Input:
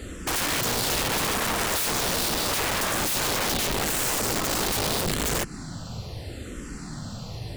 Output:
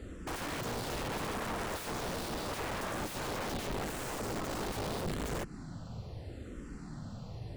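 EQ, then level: treble shelf 2.1 kHz -11.5 dB; peaking EQ 13 kHz -3.5 dB 0.26 oct; -7.5 dB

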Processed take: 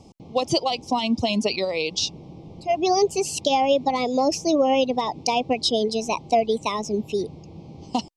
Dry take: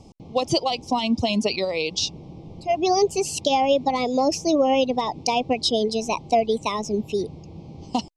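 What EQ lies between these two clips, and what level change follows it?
bass shelf 72 Hz -7 dB; 0.0 dB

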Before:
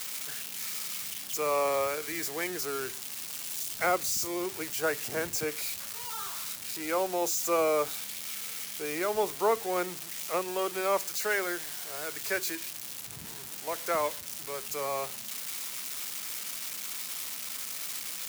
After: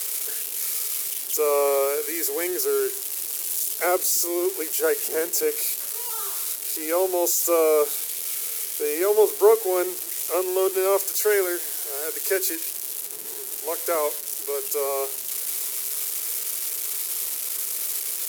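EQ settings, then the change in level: resonant high-pass 400 Hz, resonance Q 4.9; peaking EQ 12 kHz +13.5 dB 1.4 oct; 0.0 dB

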